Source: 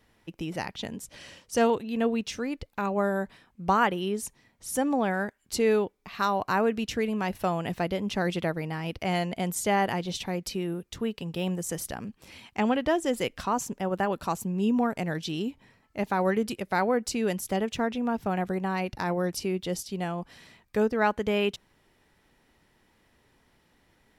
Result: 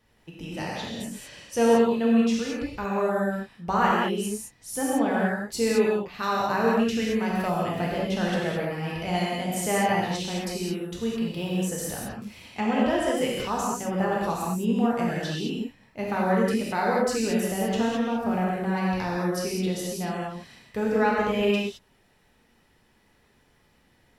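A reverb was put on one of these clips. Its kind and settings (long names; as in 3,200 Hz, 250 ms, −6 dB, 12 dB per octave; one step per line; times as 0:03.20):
reverb whose tail is shaped and stops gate 240 ms flat, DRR −5 dB
level −4 dB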